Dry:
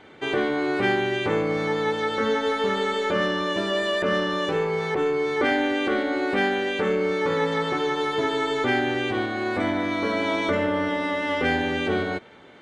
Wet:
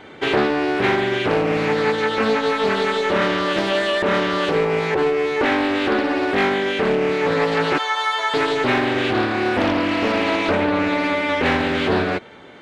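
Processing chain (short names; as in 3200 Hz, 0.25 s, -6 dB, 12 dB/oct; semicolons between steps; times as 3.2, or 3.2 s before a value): 7.78–8.34 HPF 730 Hz 24 dB/oct; vocal rider 0.5 s; Doppler distortion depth 0.5 ms; gain +5 dB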